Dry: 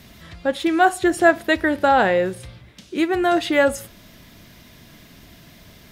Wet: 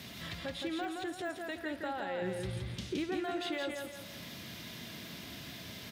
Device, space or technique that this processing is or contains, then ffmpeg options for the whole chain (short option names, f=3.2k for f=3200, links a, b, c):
broadcast voice chain: -filter_complex "[0:a]highpass=54,highpass=85,deesser=0.65,acompressor=threshold=-37dB:ratio=3,equalizer=f=3.5k:t=o:w=1.4:g=5,alimiter=level_in=4.5dB:limit=-24dB:level=0:latency=1:release=29,volume=-4.5dB,asettb=1/sr,asplit=3[a][b][c];[a]atrim=end=2.224[d];[b]atrim=start=2.22:end=3.04,asetpts=PTS-STARTPTS,afade=t=in:d=0.004:c=qsin,afade=t=out:st=0.816:d=0.004:c=qsin,lowshelf=f=210:g=10.5[e];[c]atrim=start=3.036[f];[d][e]acrossfade=d=0.004:c1=hsin:c2=qsin[g];[g][f]acrossfade=d=0.004:c1=qsin:c2=hsin,aecho=1:1:168|336|504|672|840:0.631|0.246|0.096|0.0374|0.0146,volume=-2dB"